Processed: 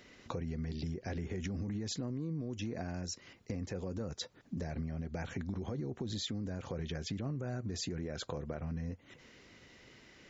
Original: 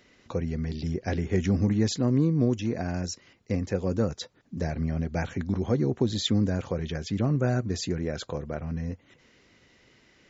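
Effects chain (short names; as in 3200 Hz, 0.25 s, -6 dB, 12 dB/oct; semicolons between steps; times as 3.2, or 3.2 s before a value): limiter -22.5 dBFS, peak gain reduction 10.5 dB; compressor 4:1, threshold -38 dBFS, peak gain reduction 10 dB; gain +1.5 dB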